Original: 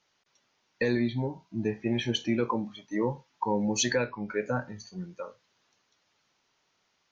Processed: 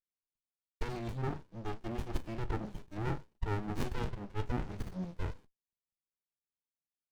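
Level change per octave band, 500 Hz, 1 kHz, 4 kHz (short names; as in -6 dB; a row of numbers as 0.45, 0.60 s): -11.5, -7.5, -17.5 dB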